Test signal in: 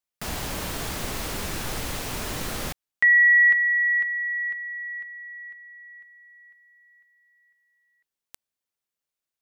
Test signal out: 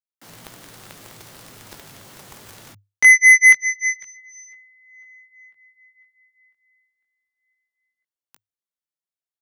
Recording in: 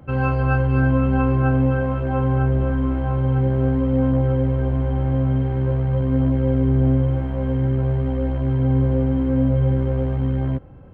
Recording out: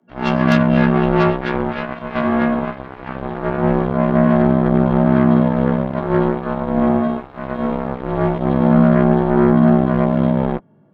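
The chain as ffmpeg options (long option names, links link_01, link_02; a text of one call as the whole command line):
ffmpeg -i in.wav -af "bandreject=frequency=2400:width=8.8,dynaudnorm=framelen=140:gausssize=3:maxgain=8dB,afreqshift=100,flanger=delay=17:depth=4:speed=0.21,aeval=exprs='0.75*(cos(1*acos(clip(val(0)/0.75,-1,1)))-cos(1*PI/2))+0.00531*(cos(5*acos(clip(val(0)/0.75,-1,1)))-cos(5*PI/2))+0.133*(cos(7*acos(clip(val(0)/0.75,-1,1)))-cos(7*PI/2))':channel_layout=same" out.wav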